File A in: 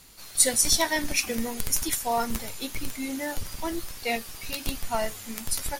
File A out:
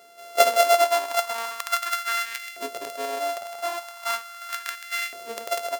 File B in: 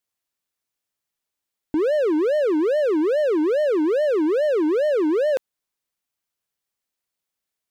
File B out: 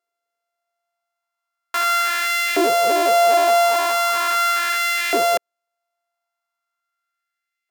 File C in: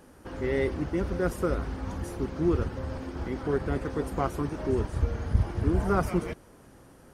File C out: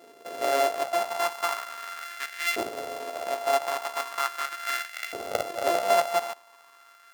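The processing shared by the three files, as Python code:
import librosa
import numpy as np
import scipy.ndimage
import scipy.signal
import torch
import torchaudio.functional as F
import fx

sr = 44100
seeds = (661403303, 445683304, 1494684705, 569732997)

y = np.r_[np.sort(x[:len(x) // 64 * 64].reshape(-1, 64), axis=1).ravel(), x[len(x) // 64 * 64:]]
y = fx.filter_lfo_highpass(y, sr, shape='saw_up', hz=0.39, low_hz=380.0, high_hz=2100.0, q=2.5)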